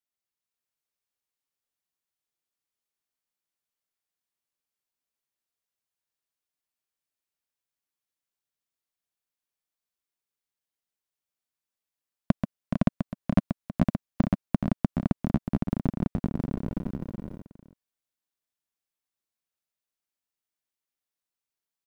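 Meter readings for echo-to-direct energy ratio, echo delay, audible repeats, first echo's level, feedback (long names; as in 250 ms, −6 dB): 0.5 dB, 134 ms, 5, −7.0 dB, repeats not evenly spaced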